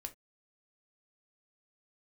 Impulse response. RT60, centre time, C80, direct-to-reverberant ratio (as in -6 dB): not exponential, 5 ms, 29.0 dB, 6.0 dB